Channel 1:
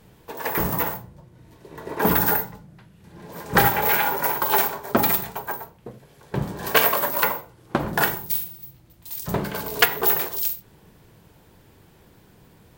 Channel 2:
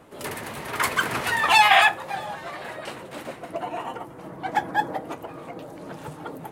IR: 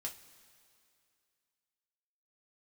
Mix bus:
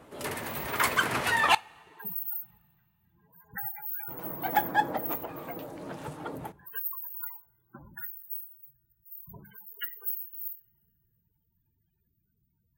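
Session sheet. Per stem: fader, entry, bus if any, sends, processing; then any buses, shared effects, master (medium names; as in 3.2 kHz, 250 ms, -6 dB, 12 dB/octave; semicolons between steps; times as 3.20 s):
-6.5 dB, 0.00 s, send -12 dB, amplifier tone stack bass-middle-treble 5-5-5; loudest bins only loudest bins 16
-3.5 dB, 0.00 s, muted 1.55–4.08 s, send -11 dB, none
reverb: on, pre-delay 3 ms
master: none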